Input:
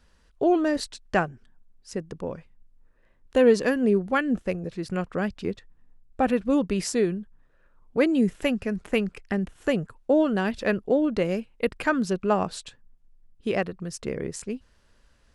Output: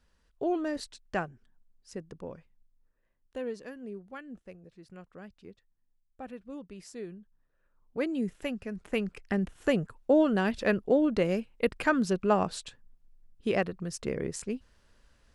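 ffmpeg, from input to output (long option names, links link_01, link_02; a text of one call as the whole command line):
ffmpeg -i in.wav -af "volume=9.5dB,afade=type=out:start_time=2.17:duration=1.41:silence=0.266073,afade=type=in:start_time=6.83:duration=1.19:silence=0.298538,afade=type=in:start_time=8.72:duration=0.7:silence=0.421697" out.wav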